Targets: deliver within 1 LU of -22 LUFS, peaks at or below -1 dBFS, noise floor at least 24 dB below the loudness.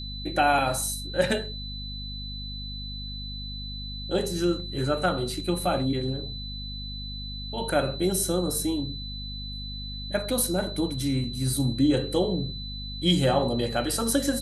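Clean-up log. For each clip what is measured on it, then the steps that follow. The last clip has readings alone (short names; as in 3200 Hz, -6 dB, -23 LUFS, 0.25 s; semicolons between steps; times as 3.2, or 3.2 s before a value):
hum 50 Hz; harmonics up to 250 Hz; hum level -35 dBFS; steady tone 4000 Hz; tone level -37 dBFS; loudness -27.5 LUFS; peak -9.0 dBFS; loudness target -22.0 LUFS
-> notches 50/100/150/200/250 Hz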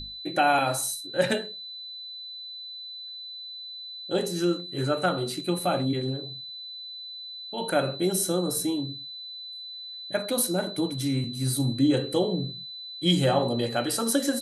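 hum none; steady tone 4000 Hz; tone level -37 dBFS
-> notch 4000 Hz, Q 30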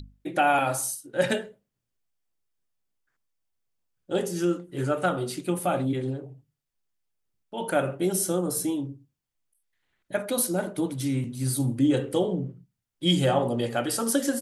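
steady tone none; loudness -26.5 LUFS; peak -9.5 dBFS; loudness target -22.0 LUFS
-> gain +4.5 dB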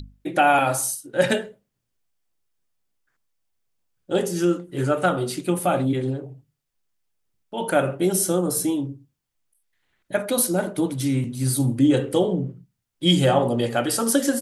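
loudness -22.0 LUFS; peak -5.0 dBFS; noise floor -79 dBFS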